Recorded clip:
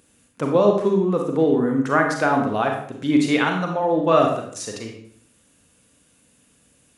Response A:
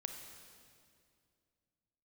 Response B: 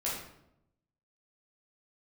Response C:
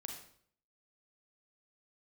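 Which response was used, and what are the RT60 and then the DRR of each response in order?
C; 2.3 s, 0.80 s, 0.60 s; 4.5 dB, -7.0 dB, 2.0 dB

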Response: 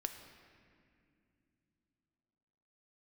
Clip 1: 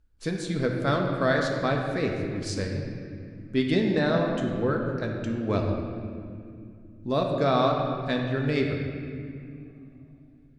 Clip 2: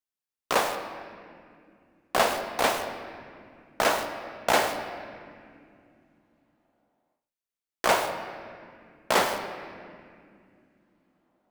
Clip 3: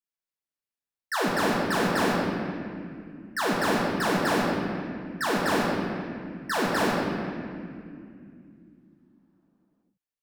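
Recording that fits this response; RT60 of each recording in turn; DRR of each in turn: 2; 2.5 s, no single decay rate, 2.4 s; 0.5 dB, 6.0 dB, -5.0 dB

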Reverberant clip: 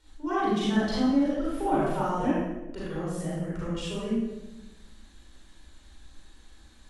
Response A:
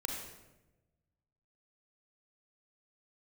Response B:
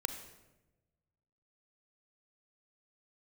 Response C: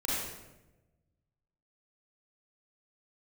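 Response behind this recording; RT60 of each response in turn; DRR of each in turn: C; 1.0 s, 1.1 s, 1.0 s; 0.0 dB, 7.0 dB, -8.0 dB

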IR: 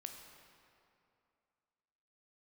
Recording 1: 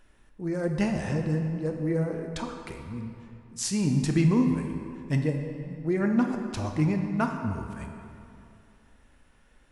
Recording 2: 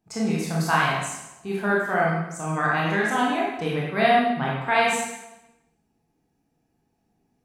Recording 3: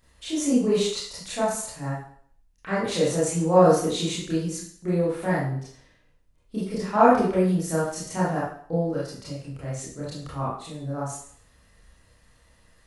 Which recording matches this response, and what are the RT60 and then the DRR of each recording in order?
1; 2.6 s, 0.95 s, 0.55 s; 3.5 dB, -5.0 dB, -9.5 dB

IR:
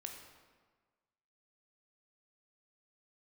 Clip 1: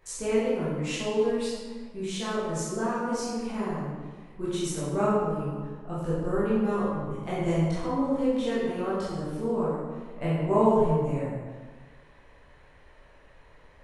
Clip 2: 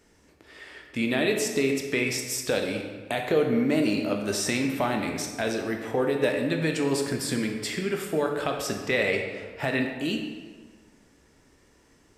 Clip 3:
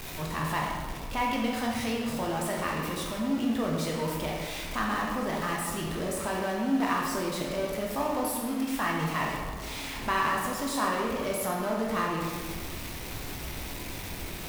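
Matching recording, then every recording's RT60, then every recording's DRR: 2; 1.5 s, 1.5 s, 1.5 s; -11.0 dB, 2.5 dB, -2.5 dB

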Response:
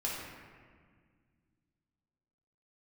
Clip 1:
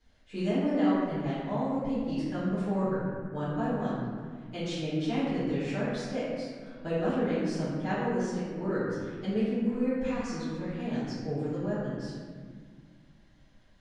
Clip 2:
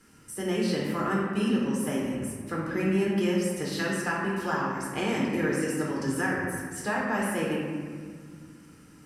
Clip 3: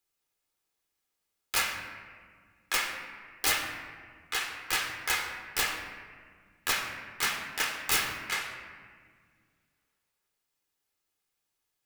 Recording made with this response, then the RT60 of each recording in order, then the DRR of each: 2; 1.8 s, 1.8 s, 1.8 s; -13.5 dB, -5.0 dB, 2.5 dB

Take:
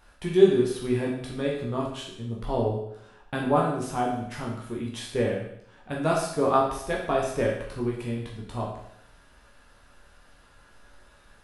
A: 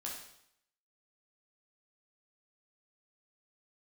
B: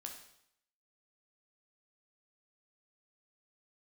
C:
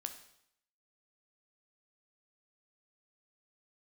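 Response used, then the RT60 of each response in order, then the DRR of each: A; 0.75 s, 0.75 s, 0.70 s; -3.5 dB, 1.5 dB, 6.5 dB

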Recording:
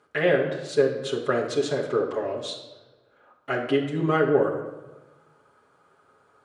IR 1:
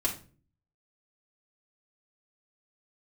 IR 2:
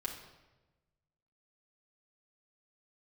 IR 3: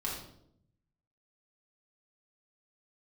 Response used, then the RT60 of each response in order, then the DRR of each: 2; 0.40 s, 1.1 s, 0.70 s; -4.5 dB, -3.5 dB, -5.0 dB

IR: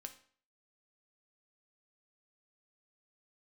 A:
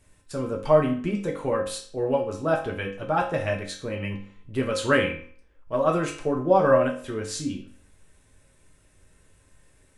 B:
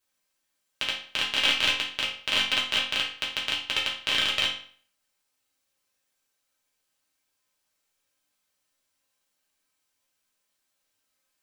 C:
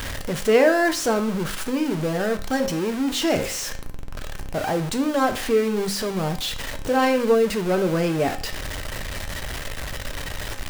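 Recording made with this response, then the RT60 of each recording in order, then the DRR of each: C; 0.50 s, 0.50 s, 0.50 s; -1.0 dB, -6.0 dB, 6.0 dB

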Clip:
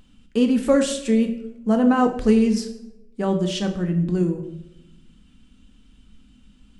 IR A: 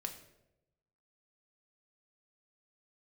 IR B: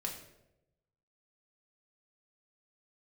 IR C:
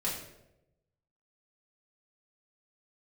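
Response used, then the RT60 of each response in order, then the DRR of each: A; 0.90 s, 0.90 s, 0.90 s; 4.0 dB, 0.0 dB, -6.5 dB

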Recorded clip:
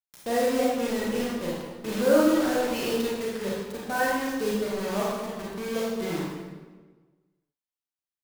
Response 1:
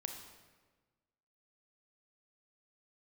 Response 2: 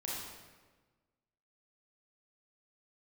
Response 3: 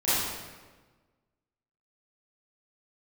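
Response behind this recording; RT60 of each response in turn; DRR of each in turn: 2; 1.4 s, 1.4 s, 1.4 s; 4.0 dB, -6.0 dB, -14.5 dB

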